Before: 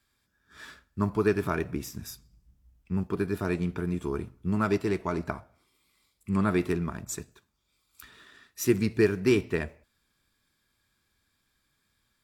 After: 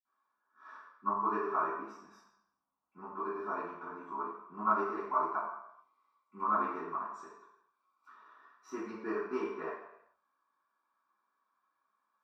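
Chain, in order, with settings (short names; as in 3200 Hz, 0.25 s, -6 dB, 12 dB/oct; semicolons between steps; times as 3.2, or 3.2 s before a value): band-pass 1100 Hz, Q 4.7; reverb RT60 0.75 s, pre-delay 46 ms, DRR -60 dB; gain -4 dB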